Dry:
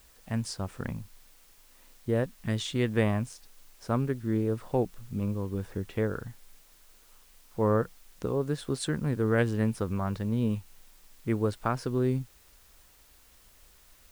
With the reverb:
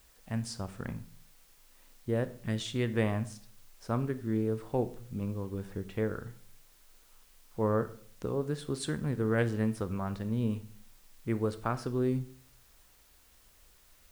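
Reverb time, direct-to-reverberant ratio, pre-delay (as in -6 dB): 0.55 s, 12.0 dB, 19 ms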